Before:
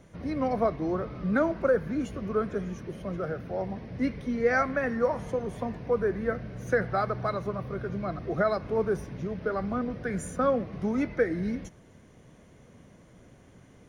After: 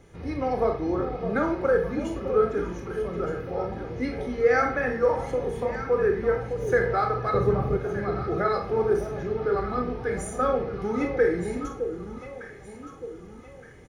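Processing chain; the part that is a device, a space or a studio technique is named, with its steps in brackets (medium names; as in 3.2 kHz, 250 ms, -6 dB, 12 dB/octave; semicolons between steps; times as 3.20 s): microphone above a desk (comb 2.4 ms, depth 51%; reverberation RT60 0.45 s, pre-delay 23 ms, DRR 3 dB); 7.34–7.77 s: bass shelf 490 Hz +11 dB; echo whose repeats swap between lows and highs 609 ms, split 870 Hz, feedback 63%, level -7.5 dB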